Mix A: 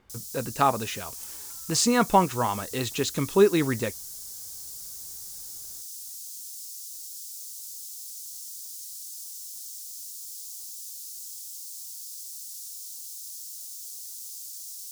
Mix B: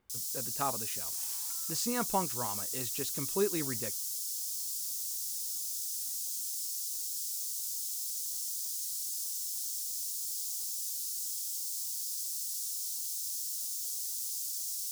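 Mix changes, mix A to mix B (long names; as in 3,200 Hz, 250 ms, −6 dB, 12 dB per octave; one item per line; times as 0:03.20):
speech −12.0 dB
first sound: send +7.5 dB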